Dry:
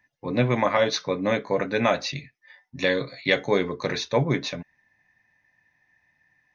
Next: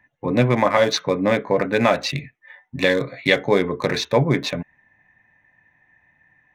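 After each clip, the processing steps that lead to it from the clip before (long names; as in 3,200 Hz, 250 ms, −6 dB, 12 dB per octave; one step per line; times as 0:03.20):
adaptive Wiener filter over 9 samples
in parallel at +0.5 dB: downward compressor, threshold −30 dBFS, peak gain reduction 14 dB
on the sum: level +2.5 dB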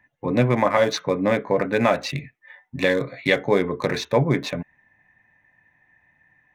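dynamic equaliser 4,200 Hz, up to −4 dB, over −35 dBFS, Q 0.97
level −1.5 dB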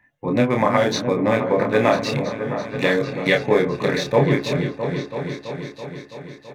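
double-tracking delay 28 ms −4 dB
echo whose low-pass opens from repeat to repeat 331 ms, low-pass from 400 Hz, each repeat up 2 octaves, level −6 dB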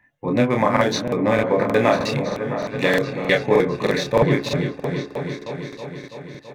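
regular buffer underruns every 0.31 s, samples 2,048, repeat, from 0:00.72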